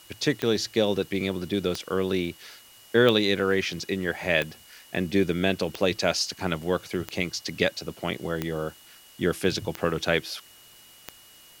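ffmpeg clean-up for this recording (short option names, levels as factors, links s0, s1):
-af "adeclick=t=4,bandreject=f=2900:w=30,afwtdn=0.0025"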